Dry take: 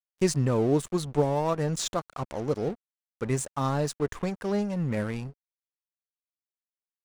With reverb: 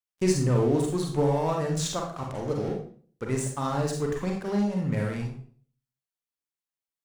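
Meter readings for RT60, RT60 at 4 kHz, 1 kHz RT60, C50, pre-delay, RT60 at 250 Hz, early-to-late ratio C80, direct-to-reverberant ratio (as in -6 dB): 0.45 s, 0.40 s, 0.45 s, 3.5 dB, 36 ms, 0.55 s, 8.5 dB, 0.5 dB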